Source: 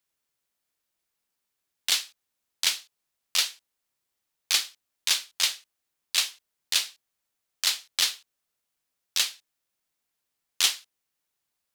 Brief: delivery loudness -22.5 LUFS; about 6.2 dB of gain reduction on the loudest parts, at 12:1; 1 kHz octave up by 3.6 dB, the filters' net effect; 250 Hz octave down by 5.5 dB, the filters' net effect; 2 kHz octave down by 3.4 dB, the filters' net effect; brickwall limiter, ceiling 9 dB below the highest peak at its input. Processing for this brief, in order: peaking EQ 250 Hz -8.5 dB; peaking EQ 1 kHz +7 dB; peaking EQ 2 kHz -6 dB; compression 12:1, threshold -25 dBFS; trim +13 dB; peak limiter -5.5 dBFS

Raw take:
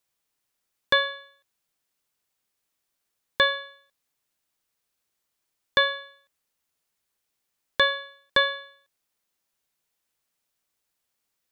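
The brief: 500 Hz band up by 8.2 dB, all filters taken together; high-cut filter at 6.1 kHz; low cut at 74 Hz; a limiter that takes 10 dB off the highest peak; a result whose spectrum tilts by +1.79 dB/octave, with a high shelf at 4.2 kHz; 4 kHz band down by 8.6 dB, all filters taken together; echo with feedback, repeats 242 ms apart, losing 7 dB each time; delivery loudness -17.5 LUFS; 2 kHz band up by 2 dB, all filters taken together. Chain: high-pass 74 Hz; low-pass 6.1 kHz; peaking EQ 500 Hz +9 dB; peaking EQ 2 kHz +4.5 dB; peaking EQ 4 kHz -7 dB; treble shelf 4.2 kHz -8.5 dB; peak limiter -15 dBFS; feedback delay 242 ms, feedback 45%, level -7 dB; trim +11.5 dB

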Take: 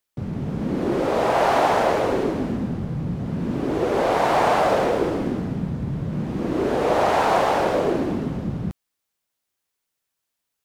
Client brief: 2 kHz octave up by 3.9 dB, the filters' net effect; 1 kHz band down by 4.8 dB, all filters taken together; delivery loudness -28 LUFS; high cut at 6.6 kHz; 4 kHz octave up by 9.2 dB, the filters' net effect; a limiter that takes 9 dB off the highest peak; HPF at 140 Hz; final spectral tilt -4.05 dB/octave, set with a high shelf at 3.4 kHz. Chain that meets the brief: high-pass 140 Hz; low-pass 6.6 kHz; peaking EQ 1 kHz -8.5 dB; peaking EQ 2 kHz +4 dB; treble shelf 3.4 kHz +8 dB; peaking EQ 4 kHz +6 dB; trim -1 dB; peak limiter -18.5 dBFS

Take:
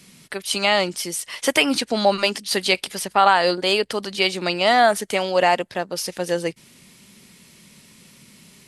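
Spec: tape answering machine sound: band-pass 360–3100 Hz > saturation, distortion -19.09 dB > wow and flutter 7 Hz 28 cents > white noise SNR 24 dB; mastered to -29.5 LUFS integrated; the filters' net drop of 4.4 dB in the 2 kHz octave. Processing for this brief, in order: band-pass 360–3100 Hz; peaking EQ 2 kHz -4.5 dB; saturation -8.5 dBFS; wow and flutter 7 Hz 28 cents; white noise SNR 24 dB; trim -5.5 dB

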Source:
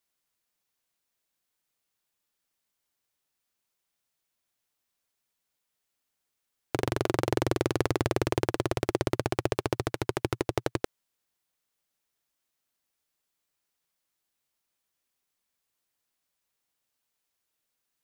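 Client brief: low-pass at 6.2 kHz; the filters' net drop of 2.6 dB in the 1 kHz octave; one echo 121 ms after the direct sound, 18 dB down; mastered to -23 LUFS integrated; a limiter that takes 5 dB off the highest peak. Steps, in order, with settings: low-pass 6.2 kHz; peaking EQ 1 kHz -3.5 dB; peak limiter -14 dBFS; delay 121 ms -18 dB; trim +11.5 dB

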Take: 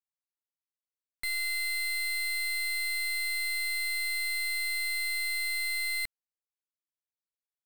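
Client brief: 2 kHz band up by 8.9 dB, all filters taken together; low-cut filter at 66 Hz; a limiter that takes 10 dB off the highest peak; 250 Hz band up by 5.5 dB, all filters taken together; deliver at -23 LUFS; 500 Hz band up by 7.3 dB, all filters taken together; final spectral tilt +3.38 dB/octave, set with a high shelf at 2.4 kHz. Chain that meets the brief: high-pass 66 Hz; peaking EQ 250 Hz +5 dB; peaking EQ 500 Hz +7.5 dB; peaking EQ 2 kHz +5 dB; treble shelf 2.4 kHz +8.5 dB; trim +7.5 dB; peak limiter -20.5 dBFS

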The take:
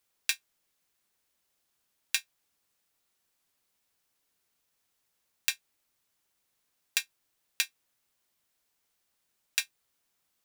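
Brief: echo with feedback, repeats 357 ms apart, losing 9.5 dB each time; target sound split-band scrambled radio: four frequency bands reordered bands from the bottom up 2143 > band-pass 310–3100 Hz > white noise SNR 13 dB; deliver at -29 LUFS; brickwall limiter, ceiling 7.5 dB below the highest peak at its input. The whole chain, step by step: peak limiter -11.5 dBFS; feedback delay 357 ms, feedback 33%, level -9.5 dB; four frequency bands reordered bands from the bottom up 2143; band-pass 310–3100 Hz; white noise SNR 13 dB; trim +19.5 dB

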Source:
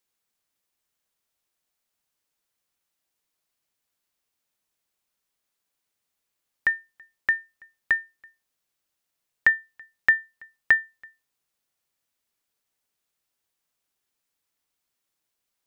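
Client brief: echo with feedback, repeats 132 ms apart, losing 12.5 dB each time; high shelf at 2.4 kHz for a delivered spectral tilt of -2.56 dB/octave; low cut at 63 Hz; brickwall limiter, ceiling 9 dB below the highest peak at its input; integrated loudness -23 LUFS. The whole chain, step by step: high-pass 63 Hz; treble shelf 2.4 kHz +6 dB; peak limiter -14 dBFS; feedback delay 132 ms, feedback 24%, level -12.5 dB; trim +4 dB

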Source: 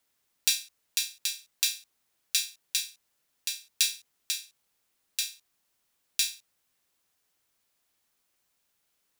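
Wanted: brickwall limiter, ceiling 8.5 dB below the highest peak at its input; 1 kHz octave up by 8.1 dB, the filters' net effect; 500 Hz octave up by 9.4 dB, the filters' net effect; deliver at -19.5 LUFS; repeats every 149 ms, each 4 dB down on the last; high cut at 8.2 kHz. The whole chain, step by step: low-pass 8.2 kHz; peaking EQ 500 Hz +8.5 dB; peaking EQ 1 kHz +8 dB; peak limiter -14 dBFS; feedback delay 149 ms, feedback 63%, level -4 dB; trim +13.5 dB

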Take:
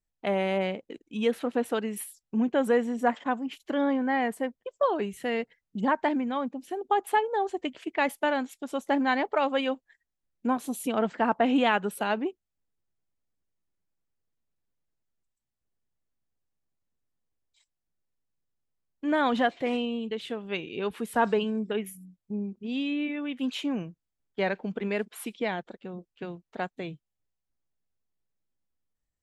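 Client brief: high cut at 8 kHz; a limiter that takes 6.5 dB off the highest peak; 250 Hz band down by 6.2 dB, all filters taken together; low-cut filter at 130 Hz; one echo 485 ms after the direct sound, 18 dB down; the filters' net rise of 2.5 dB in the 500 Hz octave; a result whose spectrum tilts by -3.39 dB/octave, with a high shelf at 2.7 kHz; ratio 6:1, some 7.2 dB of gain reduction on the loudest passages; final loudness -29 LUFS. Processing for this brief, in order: high-pass 130 Hz; low-pass 8 kHz; peaking EQ 250 Hz -8 dB; peaking EQ 500 Hz +4.5 dB; treble shelf 2.7 kHz +7.5 dB; compression 6:1, threshold -25 dBFS; peak limiter -21 dBFS; delay 485 ms -18 dB; trim +4.5 dB

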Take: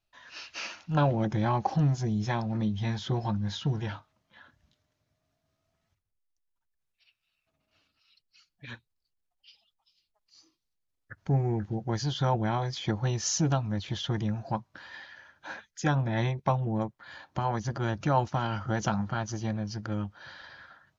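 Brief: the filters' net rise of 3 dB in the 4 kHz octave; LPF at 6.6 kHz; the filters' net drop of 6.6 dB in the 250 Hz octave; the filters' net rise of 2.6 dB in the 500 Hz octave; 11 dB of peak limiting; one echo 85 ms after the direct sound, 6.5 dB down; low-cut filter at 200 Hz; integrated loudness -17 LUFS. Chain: high-pass 200 Hz; low-pass 6.6 kHz; peaking EQ 250 Hz -8 dB; peaking EQ 500 Hz +5.5 dB; peaking EQ 4 kHz +4.5 dB; peak limiter -21.5 dBFS; delay 85 ms -6.5 dB; trim +17.5 dB

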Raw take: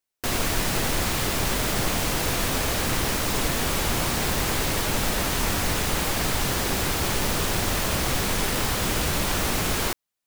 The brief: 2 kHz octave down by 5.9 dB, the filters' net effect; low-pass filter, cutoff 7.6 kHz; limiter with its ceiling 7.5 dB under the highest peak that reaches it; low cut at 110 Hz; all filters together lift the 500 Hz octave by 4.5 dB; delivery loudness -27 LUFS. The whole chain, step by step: high-pass 110 Hz; low-pass 7.6 kHz; peaking EQ 500 Hz +6 dB; peaking EQ 2 kHz -8 dB; trim +2 dB; peak limiter -18 dBFS

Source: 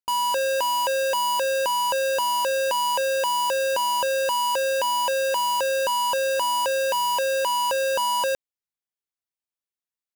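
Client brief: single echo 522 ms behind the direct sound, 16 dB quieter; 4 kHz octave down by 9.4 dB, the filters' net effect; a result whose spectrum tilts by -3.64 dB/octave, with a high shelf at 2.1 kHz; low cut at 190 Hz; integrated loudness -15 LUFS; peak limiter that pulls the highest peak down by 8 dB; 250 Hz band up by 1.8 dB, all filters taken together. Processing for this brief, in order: high-pass 190 Hz; peaking EQ 250 Hz +4 dB; treble shelf 2.1 kHz -6 dB; peaking EQ 4 kHz -8.5 dB; peak limiter -28 dBFS; delay 522 ms -16 dB; trim +16.5 dB

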